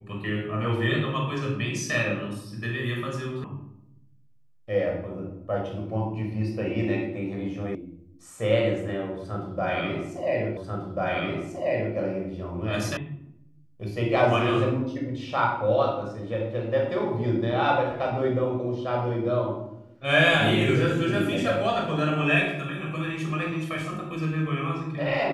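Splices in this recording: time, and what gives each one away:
0:03.44: cut off before it has died away
0:07.75: cut off before it has died away
0:10.57: the same again, the last 1.39 s
0:12.97: cut off before it has died away

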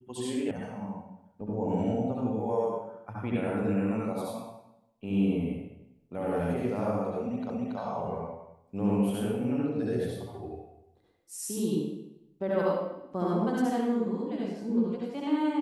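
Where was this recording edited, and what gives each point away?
0:00.51: cut off before it has died away
0:07.50: the same again, the last 0.28 s

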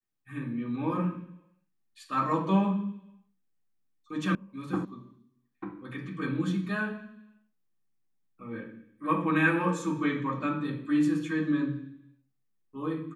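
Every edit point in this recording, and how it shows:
0:04.35: cut off before it has died away
0:04.85: cut off before it has died away

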